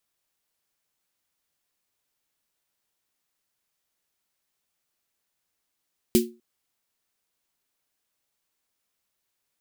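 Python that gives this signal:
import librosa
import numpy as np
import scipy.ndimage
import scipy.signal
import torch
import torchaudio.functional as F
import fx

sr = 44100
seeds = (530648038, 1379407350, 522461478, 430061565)

y = fx.drum_snare(sr, seeds[0], length_s=0.25, hz=230.0, second_hz=360.0, noise_db=-6.5, noise_from_hz=2400.0, decay_s=0.3, noise_decay_s=0.19)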